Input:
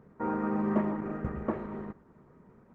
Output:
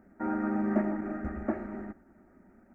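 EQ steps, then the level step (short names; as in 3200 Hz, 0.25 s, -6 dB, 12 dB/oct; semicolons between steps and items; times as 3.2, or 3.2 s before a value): fixed phaser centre 690 Hz, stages 8; +3.0 dB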